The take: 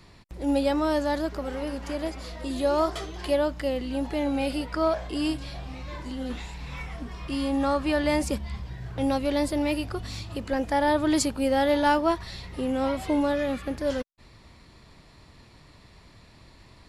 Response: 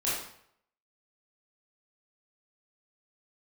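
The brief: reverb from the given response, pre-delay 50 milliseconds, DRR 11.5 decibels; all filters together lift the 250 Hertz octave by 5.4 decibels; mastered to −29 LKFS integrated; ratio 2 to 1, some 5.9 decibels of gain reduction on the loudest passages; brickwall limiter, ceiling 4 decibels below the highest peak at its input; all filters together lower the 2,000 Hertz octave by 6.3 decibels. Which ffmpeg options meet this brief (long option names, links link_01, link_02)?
-filter_complex "[0:a]equalizer=frequency=250:width_type=o:gain=6.5,equalizer=frequency=2000:width_type=o:gain=-8.5,acompressor=threshold=-27dB:ratio=2,alimiter=limit=-20.5dB:level=0:latency=1,asplit=2[link_01][link_02];[1:a]atrim=start_sample=2205,adelay=50[link_03];[link_02][link_03]afir=irnorm=-1:irlink=0,volume=-19.5dB[link_04];[link_01][link_04]amix=inputs=2:normalize=0,volume=1dB"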